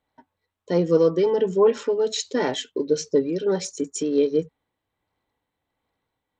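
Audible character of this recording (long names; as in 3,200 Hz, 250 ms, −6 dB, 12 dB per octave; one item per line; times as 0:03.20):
tremolo triangle 1.4 Hz, depth 45%
SBC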